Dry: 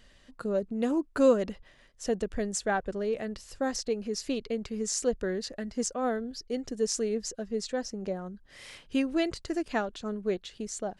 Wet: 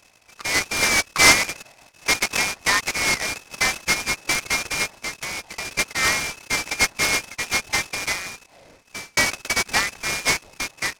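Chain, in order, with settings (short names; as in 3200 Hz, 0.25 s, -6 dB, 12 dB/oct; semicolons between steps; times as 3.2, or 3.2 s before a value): 4.98–5.79 compressor 16:1, threshold -35 dBFS, peak gain reduction 14 dB; inverted band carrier 2600 Hz; AGC gain up to 8.5 dB; 7.99–9.17 fade out; noise-modulated delay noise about 3100 Hz, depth 0.066 ms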